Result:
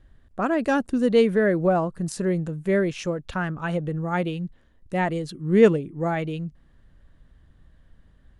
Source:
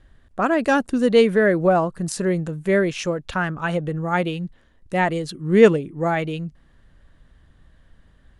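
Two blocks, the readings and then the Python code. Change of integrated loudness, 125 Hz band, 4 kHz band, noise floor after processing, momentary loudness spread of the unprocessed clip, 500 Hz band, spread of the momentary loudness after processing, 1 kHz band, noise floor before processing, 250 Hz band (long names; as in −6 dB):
−3.0 dB, −1.5 dB, −6.0 dB, −58 dBFS, 12 LU, −3.5 dB, 12 LU, −5.0 dB, −56 dBFS, −2.0 dB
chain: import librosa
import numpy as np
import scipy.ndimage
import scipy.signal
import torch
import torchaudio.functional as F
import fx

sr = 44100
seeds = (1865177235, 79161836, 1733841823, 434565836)

y = fx.low_shelf(x, sr, hz=490.0, db=5.0)
y = y * 10.0 ** (-6.0 / 20.0)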